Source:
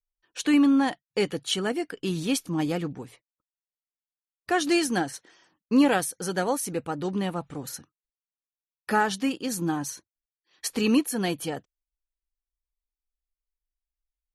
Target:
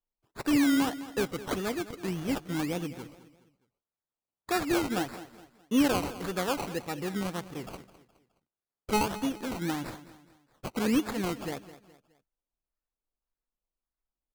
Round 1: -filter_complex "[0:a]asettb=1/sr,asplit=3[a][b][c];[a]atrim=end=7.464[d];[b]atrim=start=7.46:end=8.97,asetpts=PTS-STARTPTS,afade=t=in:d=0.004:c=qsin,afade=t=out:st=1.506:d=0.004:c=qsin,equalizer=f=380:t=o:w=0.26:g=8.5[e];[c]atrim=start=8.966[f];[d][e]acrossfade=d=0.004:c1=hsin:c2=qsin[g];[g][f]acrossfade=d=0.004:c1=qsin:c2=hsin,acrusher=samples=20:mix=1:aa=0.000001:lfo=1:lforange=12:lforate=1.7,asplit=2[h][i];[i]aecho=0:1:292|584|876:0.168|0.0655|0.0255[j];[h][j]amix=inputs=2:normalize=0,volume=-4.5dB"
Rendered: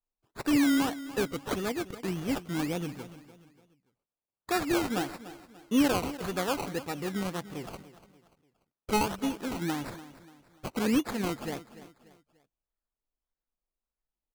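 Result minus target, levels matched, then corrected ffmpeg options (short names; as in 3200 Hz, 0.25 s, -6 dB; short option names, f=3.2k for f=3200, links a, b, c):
echo 83 ms late
-filter_complex "[0:a]asettb=1/sr,asplit=3[a][b][c];[a]atrim=end=7.464[d];[b]atrim=start=7.46:end=8.97,asetpts=PTS-STARTPTS,afade=t=in:d=0.004:c=qsin,afade=t=out:st=1.506:d=0.004:c=qsin,equalizer=f=380:t=o:w=0.26:g=8.5[e];[c]atrim=start=8.966[f];[d][e]acrossfade=d=0.004:c1=hsin:c2=qsin[g];[g][f]acrossfade=d=0.004:c1=qsin:c2=hsin,acrusher=samples=20:mix=1:aa=0.000001:lfo=1:lforange=12:lforate=1.7,asplit=2[h][i];[i]aecho=0:1:209|418|627:0.168|0.0655|0.0255[j];[h][j]amix=inputs=2:normalize=0,volume=-4.5dB"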